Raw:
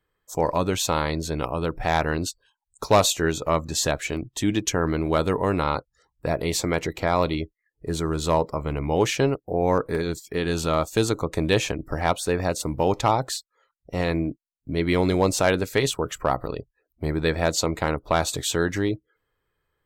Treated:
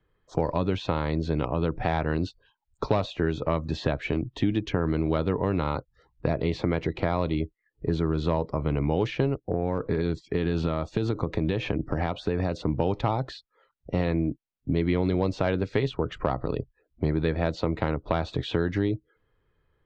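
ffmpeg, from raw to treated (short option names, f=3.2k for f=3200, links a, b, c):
-filter_complex "[0:a]asettb=1/sr,asplit=3[a][b][c];[a]atrim=end=9.344[d];[b]atrim=start=9.34:end=12.68,asetpts=PTS-STARTPTS,afade=t=in:d=0.004:c=qsin,afade=t=out:st=3.336:d=0.004:c=qsin,acompressor=threshold=-23dB:ratio=6:attack=3.2:release=140:knee=1:detection=peak[e];[c]atrim=start=12.676[f];[d][e]acrossfade=d=0.004:c1=hsin:c2=qsin[g];[g][f]acrossfade=d=0.004:c1=qsin:c2=hsin,lowpass=f=4.2k:w=0.5412,lowpass=f=4.2k:w=1.3066,lowshelf=f=470:g=9,acrossover=split=100|3300[h][i][j];[h]acompressor=threshold=-37dB:ratio=4[k];[i]acompressor=threshold=-23dB:ratio=4[l];[j]acompressor=threshold=-48dB:ratio=4[m];[k][l][m]amix=inputs=3:normalize=0"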